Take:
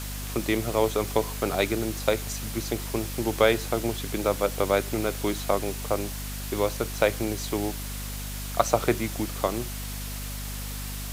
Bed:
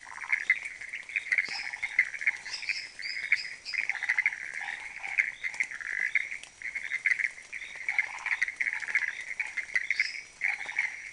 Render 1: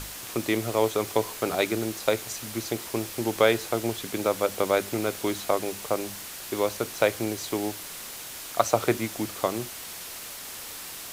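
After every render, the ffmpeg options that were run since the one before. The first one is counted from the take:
-af "bandreject=f=50:t=h:w=6,bandreject=f=100:t=h:w=6,bandreject=f=150:t=h:w=6,bandreject=f=200:t=h:w=6,bandreject=f=250:t=h:w=6"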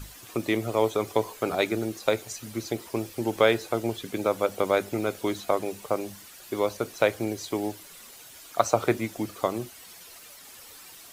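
-af "afftdn=nr=11:nf=-39"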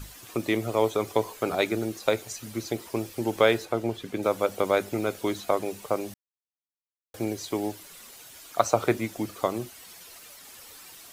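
-filter_complex "[0:a]asettb=1/sr,asplit=3[a][b][c];[a]atrim=end=3.654[d];[b]atrim=start=3.65:end=4.23,asetpts=PTS-STARTPTS,afade=t=in:d=0.004:c=qsin,afade=t=out:st=0.576:d=0.004:c=qsin,highshelf=f=4.2k:g=-8.5[e];[c]atrim=start=4.226[f];[d][e]acrossfade=d=0.004:c1=hsin:c2=qsin[g];[g][f]acrossfade=d=0.004:c1=qsin:c2=hsin,asplit=3[h][i][j];[h]atrim=end=6.14,asetpts=PTS-STARTPTS,afade=t=out:st=6.136:d=0.004:c=hsin[k];[i]atrim=start=6.14:end=7.14,asetpts=PTS-STARTPTS,volume=0[l];[j]atrim=start=7.14,asetpts=PTS-STARTPTS,afade=t=in:d=0.004:c=hsin[m];[k][l][m]concat=n=3:v=0:a=1"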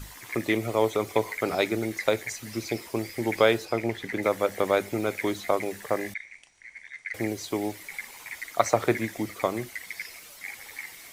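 -filter_complex "[1:a]volume=-9.5dB[a];[0:a][a]amix=inputs=2:normalize=0"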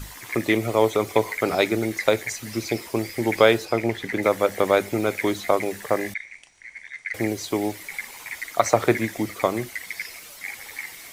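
-af "volume=4.5dB,alimiter=limit=-2dB:level=0:latency=1"

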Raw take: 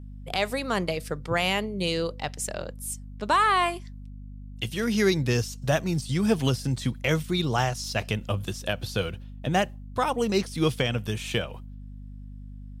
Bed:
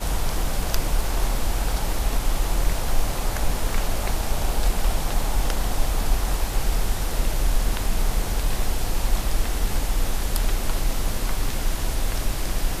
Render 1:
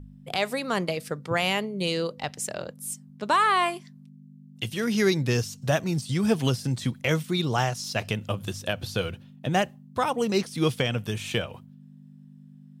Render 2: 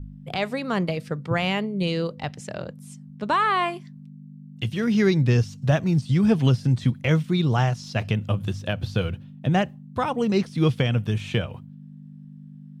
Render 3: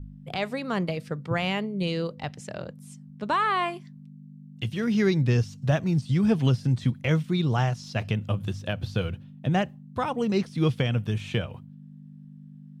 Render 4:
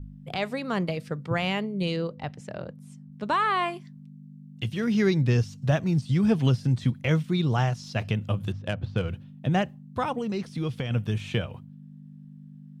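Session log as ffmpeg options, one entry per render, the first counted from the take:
-af "bandreject=f=50:t=h:w=4,bandreject=f=100:t=h:w=4"
-filter_complex "[0:a]bass=f=250:g=8,treble=f=4k:g=-6,acrossover=split=7300[a][b];[b]acompressor=threshold=-59dB:ratio=4:attack=1:release=60[c];[a][c]amix=inputs=2:normalize=0"
-af "volume=-3dB"
-filter_complex "[0:a]asettb=1/sr,asplit=3[a][b][c];[a]atrim=end=1.964[d];[b]atrim=start=1.96:end=3.12,asetpts=PTS-STARTPTS,afade=t=in:d=0.004:c=qsin,afade=t=out:st=1.156:d=0.004:c=qsin,highshelf=f=3.1k:g=-9[e];[c]atrim=start=3.116[f];[d][e]acrossfade=d=0.004:c1=hsin:c2=qsin[g];[g][f]acrossfade=d=0.004:c1=qsin:c2=hsin,asettb=1/sr,asplit=3[h][i][j];[h]atrim=end=8.524[k];[i]atrim=start=8.52:end=9.09,asetpts=PTS-STARTPTS,afade=t=in:d=0.004:c=qsin,afade=t=out:st=0.566:d=0.004:c=qsin,adynamicsmooth=sensitivity=3:basefreq=2.2k[l];[j]atrim=start=9.086[m];[k][l]acrossfade=d=0.004:c1=hsin:c2=qsin[n];[n][m]acrossfade=d=0.004:c1=qsin:c2=hsin,asettb=1/sr,asplit=3[o][p][q];[o]atrim=end=10.184[r];[p]atrim=start=10.18:end=10.91,asetpts=PTS-STARTPTS,afade=t=in:d=0.004:c=qsin,afade=t=out:st=0.726:d=0.004:c=qsin,acompressor=threshold=-27dB:ratio=3:attack=3.2:release=140:knee=1:detection=peak[s];[q]atrim=start=10.906[t];[r][s]acrossfade=d=0.004:c1=hsin:c2=qsin[u];[u][t]acrossfade=d=0.004:c1=qsin:c2=hsin"

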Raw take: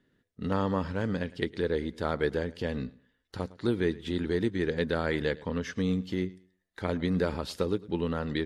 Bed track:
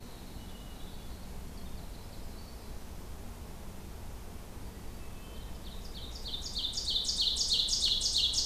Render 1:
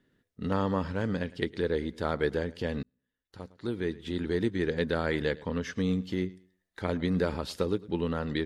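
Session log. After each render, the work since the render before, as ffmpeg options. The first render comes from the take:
-filter_complex "[0:a]asplit=2[a][b];[a]atrim=end=2.83,asetpts=PTS-STARTPTS,afade=t=out:st=2.826:d=0.004:c=hsin[c];[b]atrim=start=2.83,asetpts=PTS-STARTPTS,afade=t=in:d=1.61[d];[c][d]concat=n=2:v=0:a=1"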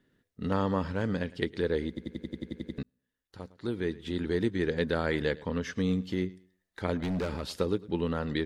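-filter_complex "[0:a]asettb=1/sr,asplit=3[a][b][c];[a]atrim=end=7.004[d];[b]atrim=start=7:end=7.49,asetpts=PTS-STARTPTS,afade=t=in:d=0.004:c=qsin,afade=t=out:st=0.486:d=0.004:c=qsin,volume=28dB,asoftclip=hard,volume=-28dB[e];[c]atrim=start=7.486[f];[d][e]acrossfade=d=0.004:c1=hsin:c2=qsin[g];[g][f]acrossfade=d=0.004:c1=qsin:c2=hsin,asplit=11[h][i][j][k][l][m][n][o][p][q][r];[h]atrim=end=1.972[s];[i]atrim=start=1.878:end=1.972[t];[j]atrim=start=1.878:end=1.972[u];[k]atrim=start=1.878:end=1.972[v];[l]atrim=start=1.878:end=1.972[w];[m]atrim=start=1.878:end=1.972[x];[n]atrim=start=1.878:end=1.972[y];[o]atrim=start=1.878:end=1.972[z];[p]atrim=start=1.878:end=1.972[aa];[q]atrim=start=1.878:end=1.972[ab];[r]atrim=start=2.778[ac];[s][t]acrossfade=d=0.004:c1=hsin:c2=hsin[ad];[ad][u]acrossfade=d=0.004:c1=hsin:c2=hsin[ae];[ae][v]acrossfade=d=0.004:c1=hsin:c2=hsin[af];[af][w]acrossfade=d=0.004:c1=hsin:c2=hsin[ag];[ag][x]acrossfade=d=0.004:c1=hsin:c2=hsin[ah];[ah][y]acrossfade=d=0.004:c1=hsin:c2=hsin[ai];[ai][z]acrossfade=d=0.004:c1=hsin:c2=hsin[aj];[aj][aa]acrossfade=d=0.004:c1=hsin:c2=hsin[ak];[ak][ab]acrossfade=d=0.004:c1=hsin:c2=hsin[al];[al][ac]acrossfade=d=0.004:c1=hsin:c2=hsin"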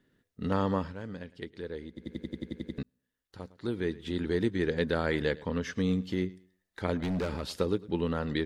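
-filter_complex "[0:a]asplit=3[a][b][c];[a]atrim=end=0.95,asetpts=PTS-STARTPTS,afade=t=out:st=0.75:d=0.2:silence=0.316228[d];[b]atrim=start=0.95:end=1.93,asetpts=PTS-STARTPTS,volume=-10dB[e];[c]atrim=start=1.93,asetpts=PTS-STARTPTS,afade=t=in:d=0.2:silence=0.316228[f];[d][e][f]concat=n=3:v=0:a=1"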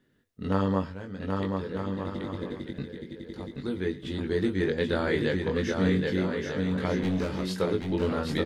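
-filter_complex "[0:a]asplit=2[a][b];[b]adelay=21,volume=-4.5dB[c];[a][c]amix=inputs=2:normalize=0,aecho=1:1:780|1248|1529|1697|1798:0.631|0.398|0.251|0.158|0.1"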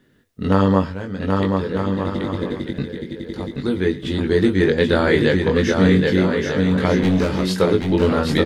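-af "volume=10.5dB,alimiter=limit=-3dB:level=0:latency=1"

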